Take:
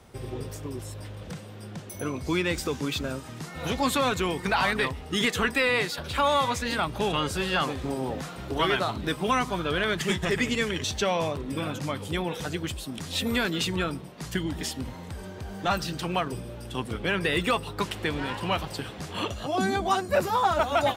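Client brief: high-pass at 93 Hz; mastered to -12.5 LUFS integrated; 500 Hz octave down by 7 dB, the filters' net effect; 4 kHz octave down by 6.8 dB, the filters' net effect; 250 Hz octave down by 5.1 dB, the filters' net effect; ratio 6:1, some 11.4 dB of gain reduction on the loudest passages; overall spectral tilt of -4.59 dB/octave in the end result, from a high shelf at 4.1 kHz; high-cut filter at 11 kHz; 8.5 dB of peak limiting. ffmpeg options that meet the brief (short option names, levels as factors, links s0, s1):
-af "highpass=93,lowpass=11000,equalizer=f=250:t=o:g=-4.5,equalizer=f=500:t=o:g=-7.5,equalizer=f=4000:t=o:g=-7,highshelf=f=4100:g=-3.5,acompressor=threshold=0.0178:ratio=6,volume=26.6,alimiter=limit=0.794:level=0:latency=1"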